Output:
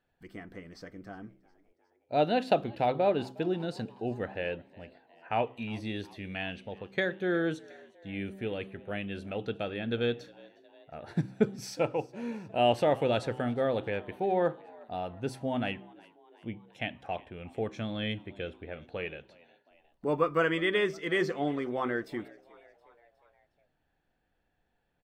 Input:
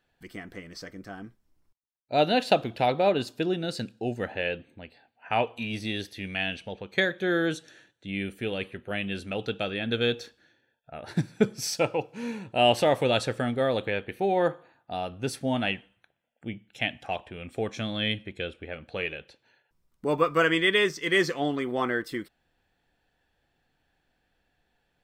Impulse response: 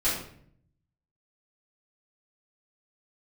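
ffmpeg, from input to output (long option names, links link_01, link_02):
-filter_complex "[0:a]highshelf=frequency=2400:gain=-10.5,bandreject=frequency=64.5:width_type=h:width=4,bandreject=frequency=129:width_type=h:width=4,bandreject=frequency=193.5:width_type=h:width=4,bandreject=frequency=258:width_type=h:width=4,bandreject=frequency=322.5:width_type=h:width=4,bandreject=frequency=387:width_type=h:width=4,asplit=2[link_01][link_02];[link_02]asplit=4[link_03][link_04][link_05][link_06];[link_03]adelay=361,afreqshift=76,volume=-24dB[link_07];[link_04]adelay=722,afreqshift=152,volume=-28.3dB[link_08];[link_05]adelay=1083,afreqshift=228,volume=-32.6dB[link_09];[link_06]adelay=1444,afreqshift=304,volume=-36.9dB[link_10];[link_07][link_08][link_09][link_10]amix=inputs=4:normalize=0[link_11];[link_01][link_11]amix=inputs=2:normalize=0,volume=-2.5dB"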